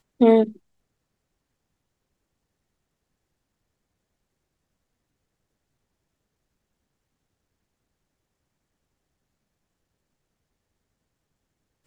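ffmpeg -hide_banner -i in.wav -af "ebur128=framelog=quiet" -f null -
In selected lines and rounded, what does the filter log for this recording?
Integrated loudness:
  I:         -18.7 LUFS
  Threshold: -29.5 LUFS
Loudness range:
  LRA:        11.5 LU
  Threshold: -48.2 LUFS
  LRA low:   -37.4 LUFS
  LRA high:  -25.9 LUFS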